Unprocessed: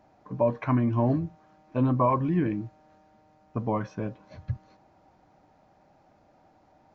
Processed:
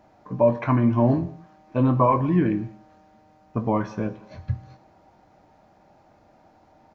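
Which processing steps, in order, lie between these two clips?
doubling 22 ms -11 dB; gated-style reverb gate 260 ms falling, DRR 11 dB; trim +4 dB

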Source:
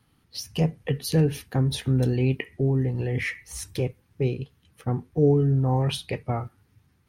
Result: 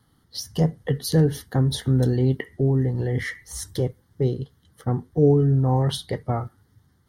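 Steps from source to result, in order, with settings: Butterworth band-stop 2.5 kHz, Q 2.4; trim +2.5 dB

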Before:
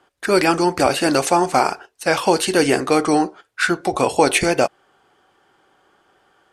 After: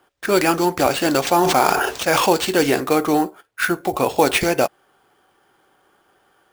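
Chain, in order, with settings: 2.93–4.18 s: treble shelf 5.3 kHz -6 dB; sample-rate reducer 12 kHz, jitter 0%; 1.26–2.33 s: decay stretcher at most 23 dB/s; trim -1 dB

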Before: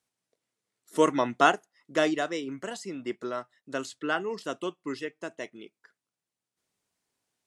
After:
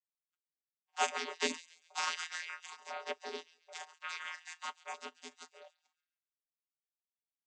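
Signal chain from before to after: gate -53 dBFS, range -8 dB; spectral gate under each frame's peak -30 dB weak; vocoder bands 16, square 83.9 Hz; feedback echo behind a high-pass 138 ms, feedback 37%, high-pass 2.1 kHz, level -17 dB; LFO high-pass sine 0.52 Hz 350–1600 Hz; phaser 0.33 Hz, delay 1.1 ms, feedback 21%; trim +10 dB

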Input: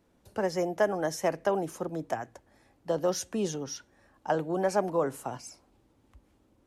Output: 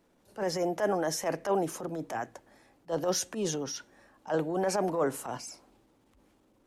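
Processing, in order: peaking EQ 70 Hz -12 dB 1.4 oct; transient shaper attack -11 dB, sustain +3 dB; trim +2 dB

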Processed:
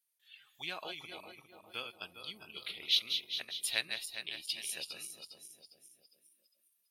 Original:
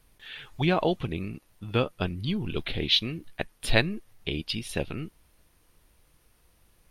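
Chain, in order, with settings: backward echo that repeats 203 ms, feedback 67%, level -6 dB; spectral noise reduction 15 dB; differentiator

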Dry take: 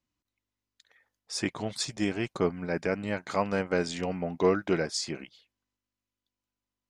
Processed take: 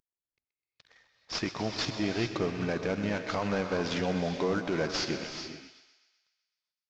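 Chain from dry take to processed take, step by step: CVSD coder 32 kbps; in parallel at -2.5 dB: level held to a coarse grid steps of 19 dB; on the sum: peak limiter -20.5 dBFS, peak gain reduction 9 dB; thinning echo 127 ms, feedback 59%, high-pass 530 Hz, level -12 dB; gated-style reverb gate 460 ms rising, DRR 7 dB

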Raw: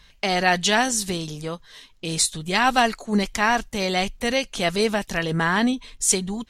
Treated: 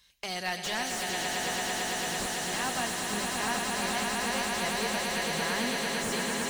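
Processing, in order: high-pass 43 Hz; pre-emphasis filter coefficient 0.8; hum notches 50/100/150/200 Hz; on a send: echo with a slow build-up 112 ms, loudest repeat 8, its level -6 dB; on the sum: slew-rate limiter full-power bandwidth 140 Hz; trim -2 dB

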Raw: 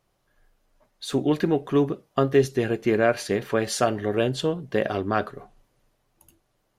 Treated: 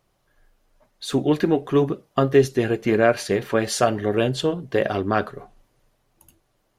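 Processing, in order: flange 0.98 Hz, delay 0 ms, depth 3.7 ms, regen -72%; trim +7 dB

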